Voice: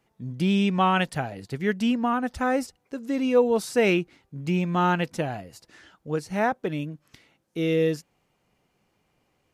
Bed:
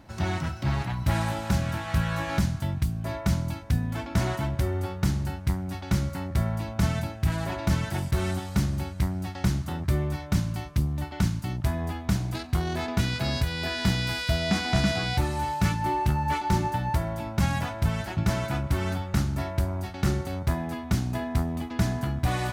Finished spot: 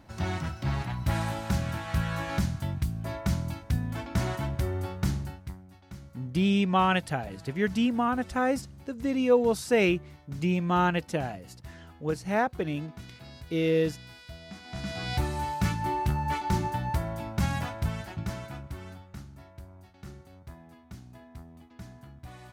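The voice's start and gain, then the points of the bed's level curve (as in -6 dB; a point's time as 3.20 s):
5.95 s, -2.0 dB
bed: 5.14 s -3 dB
5.69 s -19.5 dB
14.59 s -19.5 dB
15.14 s -3 dB
17.69 s -3 dB
19.34 s -20 dB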